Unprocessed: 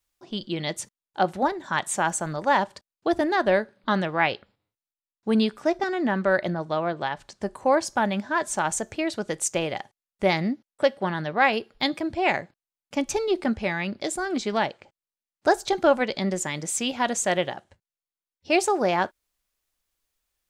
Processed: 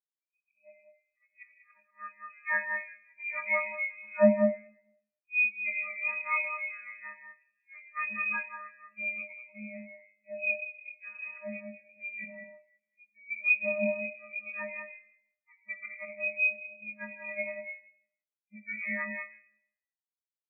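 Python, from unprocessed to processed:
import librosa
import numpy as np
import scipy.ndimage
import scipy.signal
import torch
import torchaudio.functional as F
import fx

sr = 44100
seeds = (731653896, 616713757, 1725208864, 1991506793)

y = fx.freq_snap(x, sr, grid_st=3)
y = fx.env_lowpass(y, sr, base_hz=750.0, full_db=-17.5)
y = fx.peak_eq(y, sr, hz=850.0, db=-9.5, octaves=2.9)
y = fx.auto_swell(y, sr, attack_ms=244.0)
y = fx.doubler(y, sr, ms=23.0, db=-9.0)
y = y + 10.0 ** (-4.5 / 20.0) * np.pad(y, (int(192 * sr / 1000.0), 0))[:len(y)]
y = fx.rev_freeverb(y, sr, rt60_s=1.8, hf_ratio=0.6, predelay_ms=10, drr_db=2.0)
y = fx.freq_invert(y, sr, carrier_hz=2700)
y = fx.spectral_expand(y, sr, expansion=2.5)
y = y * librosa.db_to_amplitude(1.5)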